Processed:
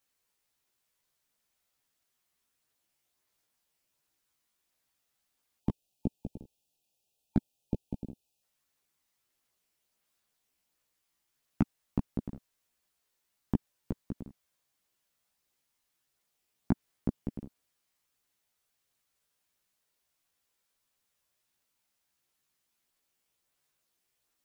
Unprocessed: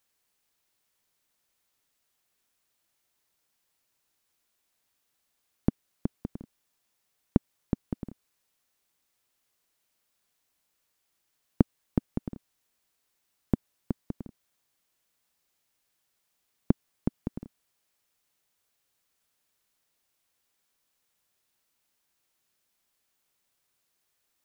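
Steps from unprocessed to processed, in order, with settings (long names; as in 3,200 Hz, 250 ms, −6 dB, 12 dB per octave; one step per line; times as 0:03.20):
gain on a spectral selection 0:05.59–0:08.42, 900–2,400 Hz −27 dB
hard clipping −10 dBFS, distortion −12 dB
multi-voice chorus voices 2, 0.74 Hz, delay 15 ms, depth 1.1 ms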